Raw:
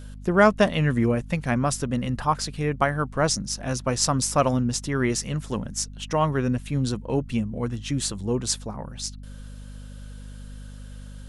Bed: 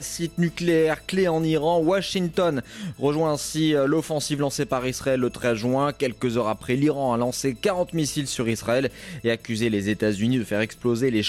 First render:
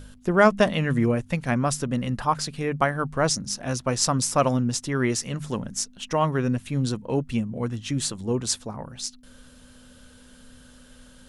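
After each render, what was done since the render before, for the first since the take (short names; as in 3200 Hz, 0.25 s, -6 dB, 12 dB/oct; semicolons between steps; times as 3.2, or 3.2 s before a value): de-hum 50 Hz, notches 4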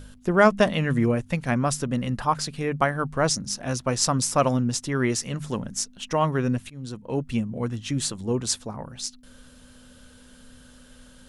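6.7–7.31 fade in, from -22 dB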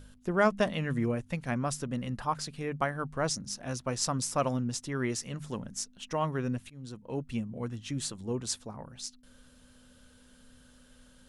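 gain -8 dB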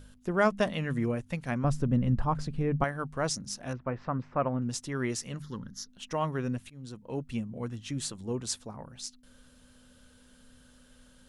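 1.64–2.84 tilt -3.5 dB/oct; 3.73–4.62 LPF 2100 Hz 24 dB/oct; 5.42–5.89 fixed phaser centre 2500 Hz, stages 6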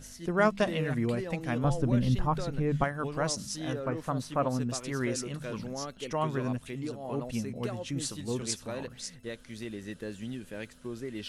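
add bed -16.5 dB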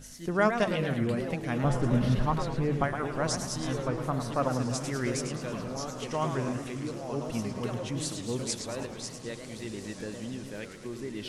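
on a send: diffused feedback echo 1.453 s, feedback 41%, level -12.5 dB; on the sum: warbling echo 0.107 s, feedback 51%, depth 218 cents, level -8 dB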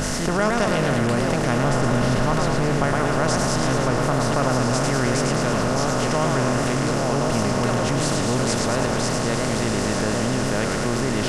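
per-bin compression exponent 0.4; fast leveller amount 50%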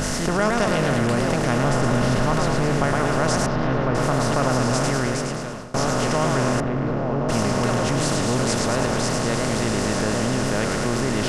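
3.46–3.95 air absorption 290 m; 4.86–5.74 fade out, to -22.5 dB; 6.6–7.29 tape spacing loss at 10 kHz 41 dB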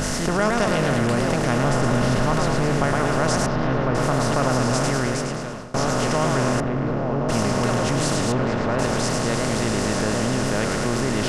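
5.23–5.9 high shelf 8600 Hz -4 dB; 8.32–8.79 LPF 2400 Hz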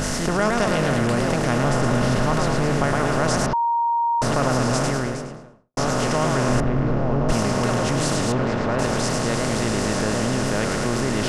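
3.53–4.22 bleep 936 Hz -17.5 dBFS; 4.76–5.77 studio fade out; 6.49–7.33 low shelf 90 Hz +11 dB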